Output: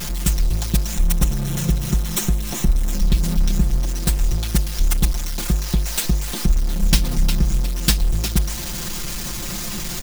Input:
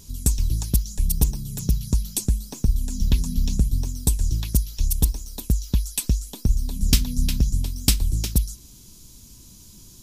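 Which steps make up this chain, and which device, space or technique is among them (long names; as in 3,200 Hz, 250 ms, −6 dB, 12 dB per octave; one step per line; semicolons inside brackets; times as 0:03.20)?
early CD player with a faulty converter (converter with a step at zero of −23 dBFS; converter with an unsteady clock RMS 0.02 ms)
0:00.94–0:02.92: notch filter 4,700 Hz, Q 6.5
comb filter 5.7 ms, depth 95%
level −1 dB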